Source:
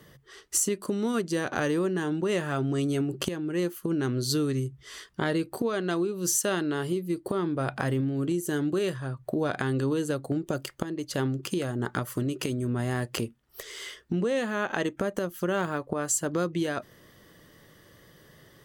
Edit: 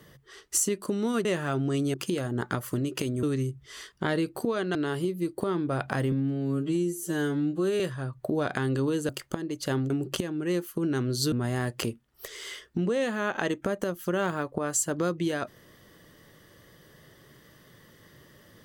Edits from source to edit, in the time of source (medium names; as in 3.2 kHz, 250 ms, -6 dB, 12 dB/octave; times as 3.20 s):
1.25–2.29 s: delete
2.98–4.40 s: swap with 11.38–12.67 s
5.92–6.63 s: delete
8.00–8.84 s: stretch 2×
10.13–10.57 s: delete